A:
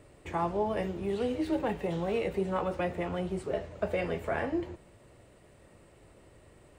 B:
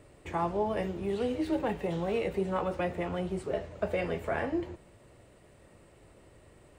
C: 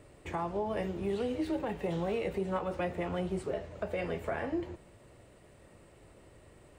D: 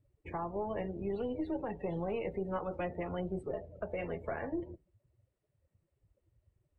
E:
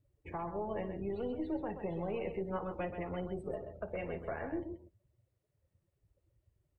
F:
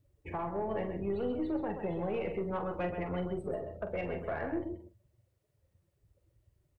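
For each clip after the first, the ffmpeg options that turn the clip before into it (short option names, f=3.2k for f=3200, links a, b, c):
-af anull
-af "alimiter=limit=-24dB:level=0:latency=1:release=223"
-af "aeval=exprs='0.0668*(cos(1*acos(clip(val(0)/0.0668,-1,1)))-cos(1*PI/2))+0.00335*(cos(4*acos(clip(val(0)/0.0668,-1,1)))-cos(4*PI/2))+0.000944*(cos(7*acos(clip(val(0)/0.0668,-1,1)))-cos(7*PI/2))':c=same,afftdn=nr=26:nf=-43,volume=-3dB"
-af "aecho=1:1:57|130:0.126|0.376,volume=-2dB"
-filter_complex "[0:a]asoftclip=type=tanh:threshold=-29dB,asplit=2[a][b];[b]adelay=45,volume=-9.5dB[c];[a][c]amix=inputs=2:normalize=0,volume=4dB"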